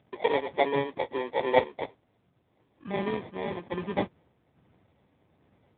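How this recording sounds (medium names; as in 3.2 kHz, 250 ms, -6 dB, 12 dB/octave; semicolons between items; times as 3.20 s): random-step tremolo; aliases and images of a low sample rate 1.4 kHz, jitter 0%; AMR-NB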